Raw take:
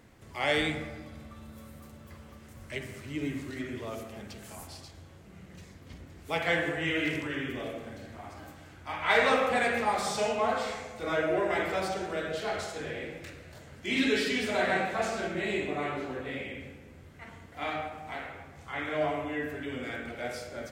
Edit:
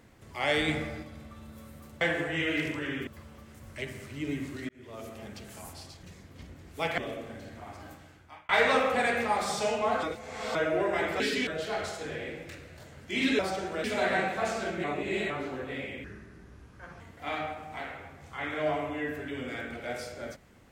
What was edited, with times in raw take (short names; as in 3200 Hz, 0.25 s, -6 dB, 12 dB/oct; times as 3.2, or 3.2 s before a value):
0.68–1.03 gain +3.5 dB
3.63–4.11 fade in
4.97–5.54 cut
6.49–7.55 move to 2.01
8.47–9.06 fade out
10.6–11.12 reverse
11.77–12.22 swap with 14.14–14.41
15.41–15.87 reverse
16.61–17.35 speed 77%